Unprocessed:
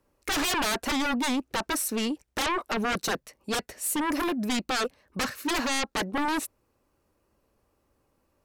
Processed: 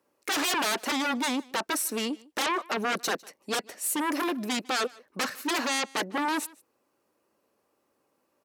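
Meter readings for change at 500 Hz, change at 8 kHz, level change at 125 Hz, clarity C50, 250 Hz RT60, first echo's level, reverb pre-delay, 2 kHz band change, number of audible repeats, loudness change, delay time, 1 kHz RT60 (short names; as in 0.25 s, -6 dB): -0.5 dB, 0.0 dB, -6.5 dB, none, none, -24.0 dB, none, 0.0 dB, 1, -0.5 dB, 0.152 s, none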